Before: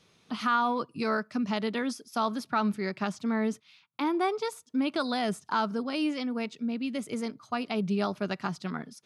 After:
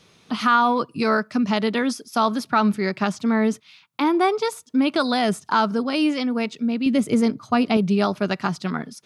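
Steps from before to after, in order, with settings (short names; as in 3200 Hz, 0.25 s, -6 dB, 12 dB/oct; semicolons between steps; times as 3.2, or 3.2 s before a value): 6.86–7.77 low shelf 440 Hz +8.5 dB; gain +8.5 dB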